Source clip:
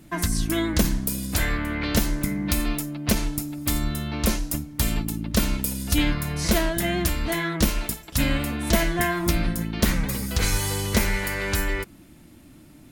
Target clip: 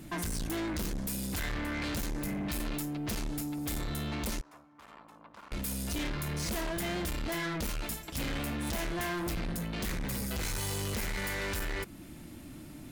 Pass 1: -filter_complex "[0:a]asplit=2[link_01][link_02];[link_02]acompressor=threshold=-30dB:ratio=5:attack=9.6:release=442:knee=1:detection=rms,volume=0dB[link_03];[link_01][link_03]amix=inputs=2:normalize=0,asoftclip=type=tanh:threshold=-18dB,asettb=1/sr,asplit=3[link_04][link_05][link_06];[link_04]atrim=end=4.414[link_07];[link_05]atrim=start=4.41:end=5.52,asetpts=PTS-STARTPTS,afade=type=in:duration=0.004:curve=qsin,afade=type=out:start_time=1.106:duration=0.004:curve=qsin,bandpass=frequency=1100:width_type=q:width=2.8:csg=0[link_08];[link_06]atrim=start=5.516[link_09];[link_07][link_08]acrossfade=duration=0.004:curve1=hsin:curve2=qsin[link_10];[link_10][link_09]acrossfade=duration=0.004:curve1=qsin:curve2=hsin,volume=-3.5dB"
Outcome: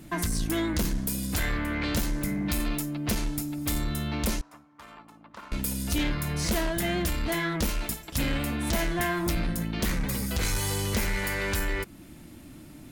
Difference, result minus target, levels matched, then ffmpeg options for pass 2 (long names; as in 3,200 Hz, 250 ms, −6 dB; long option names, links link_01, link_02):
soft clipping: distortion −7 dB
-filter_complex "[0:a]asplit=2[link_01][link_02];[link_02]acompressor=threshold=-30dB:ratio=5:attack=9.6:release=442:knee=1:detection=rms,volume=0dB[link_03];[link_01][link_03]amix=inputs=2:normalize=0,asoftclip=type=tanh:threshold=-28.5dB,asettb=1/sr,asplit=3[link_04][link_05][link_06];[link_04]atrim=end=4.414[link_07];[link_05]atrim=start=4.41:end=5.52,asetpts=PTS-STARTPTS,afade=type=in:duration=0.004:curve=qsin,afade=type=out:start_time=1.106:duration=0.004:curve=qsin,bandpass=frequency=1100:width_type=q:width=2.8:csg=0[link_08];[link_06]atrim=start=5.516[link_09];[link_07][link_08]acrossfade=duration=0.004:curve1=hsin:curve2=qsin[link_10];[link_10][link_09]acrossfade=duration=0.004:curve1=qsin:curve2=hsin,volume=-3.5dB"